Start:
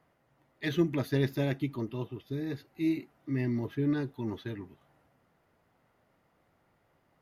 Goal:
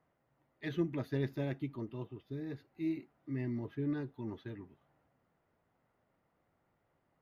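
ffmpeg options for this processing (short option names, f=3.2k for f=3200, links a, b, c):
-af "highshelf=f=4.1k:g=-11,volume=-6.5dB"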